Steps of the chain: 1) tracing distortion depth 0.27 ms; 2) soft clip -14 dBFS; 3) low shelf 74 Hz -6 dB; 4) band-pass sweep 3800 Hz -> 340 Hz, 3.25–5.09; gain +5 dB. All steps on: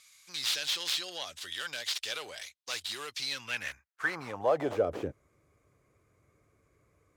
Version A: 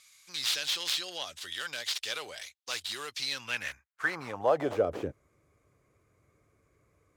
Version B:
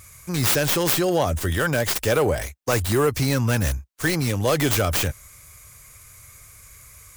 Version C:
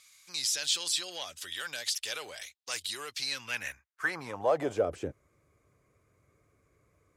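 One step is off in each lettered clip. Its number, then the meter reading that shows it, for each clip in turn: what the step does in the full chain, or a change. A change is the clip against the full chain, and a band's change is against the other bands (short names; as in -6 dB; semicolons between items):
2, distortion -22 dB; 4, 125 Hz band +15.5 dB; 1, 8 kHz band +6.0 dB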